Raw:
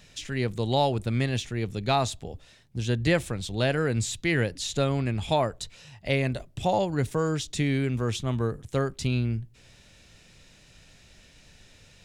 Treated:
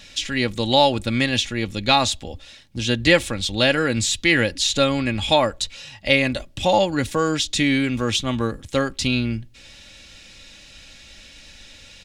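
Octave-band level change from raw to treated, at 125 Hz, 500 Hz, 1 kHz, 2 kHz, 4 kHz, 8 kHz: -0.5 dB, +6.0 dB, +7.0 dB, +10.5 dB, +13.0 dB, +9.5 dB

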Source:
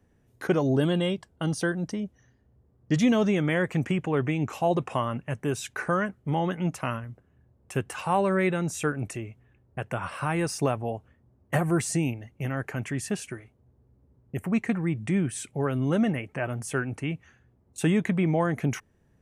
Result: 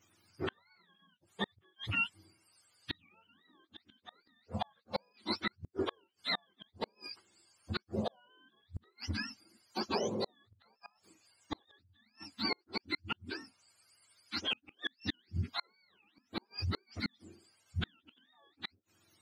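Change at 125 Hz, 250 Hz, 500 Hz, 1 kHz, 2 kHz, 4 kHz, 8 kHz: -16.5 dB, -17.5 dB, -15.0 dB, -12.5 dB, -8.5 dB, +1.0 dB, -19.5 dB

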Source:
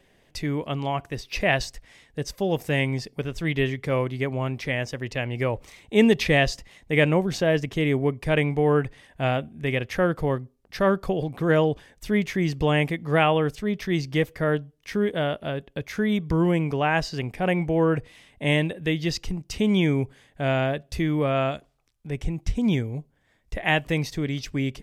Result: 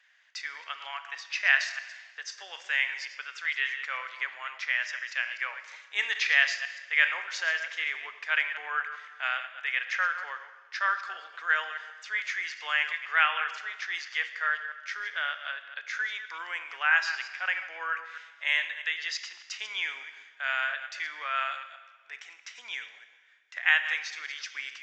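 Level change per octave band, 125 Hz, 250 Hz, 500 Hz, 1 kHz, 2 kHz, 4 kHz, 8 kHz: under -40 dB, under -40 dB, -26.0 dB, -4.5 dB, +3.5 dB, -1.5 dB, -3.5 dB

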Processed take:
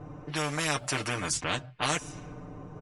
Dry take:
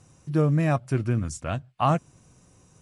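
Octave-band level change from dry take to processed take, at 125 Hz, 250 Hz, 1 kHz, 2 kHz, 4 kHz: -13.0 dB, -10.0 dB, -5.0 dB, +6.0 dB, +12.0 dB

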